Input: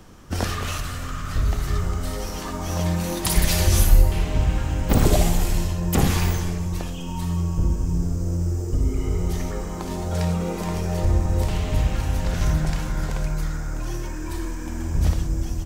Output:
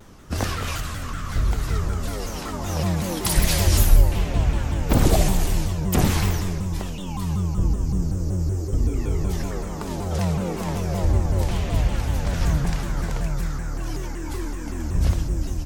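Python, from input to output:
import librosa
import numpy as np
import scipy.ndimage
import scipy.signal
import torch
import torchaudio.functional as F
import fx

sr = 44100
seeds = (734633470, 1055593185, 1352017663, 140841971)

y = fx.vibrato_shape(x, sr, shape='saw_down', rate_hz=5.3, depth_cents=250.0)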